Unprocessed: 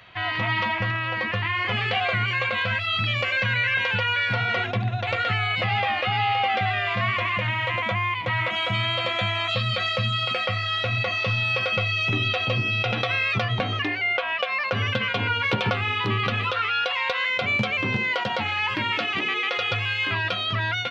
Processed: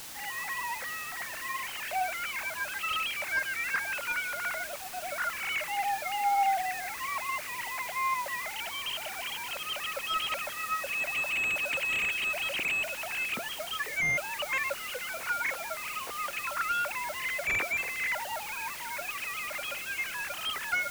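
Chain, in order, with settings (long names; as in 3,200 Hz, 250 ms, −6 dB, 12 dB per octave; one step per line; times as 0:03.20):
three sine waves on the formant tracks
bit-depth reduction 6 bits, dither triangular
slew-rate limiting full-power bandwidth 200 Hz
level −6 dB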